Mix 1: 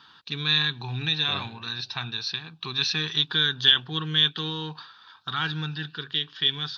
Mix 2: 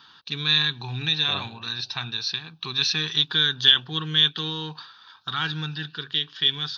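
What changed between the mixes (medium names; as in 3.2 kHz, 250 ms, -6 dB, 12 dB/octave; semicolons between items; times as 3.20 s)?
first voice: add treble shelf 5.5 kHz +8 dB; second voice: add resonant low-pass 1 kHz, resonance Q 1.9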